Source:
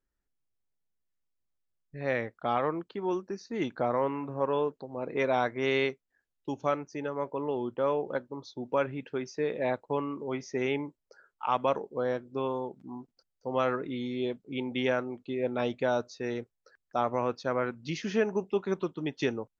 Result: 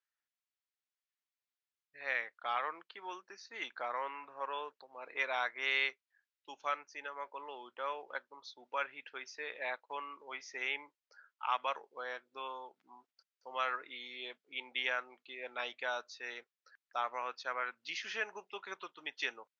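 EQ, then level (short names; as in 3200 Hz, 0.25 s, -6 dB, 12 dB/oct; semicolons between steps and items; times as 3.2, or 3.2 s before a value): HPF 1500 Hz 12 dB/oct; air absorption 120 m; +3.0 dB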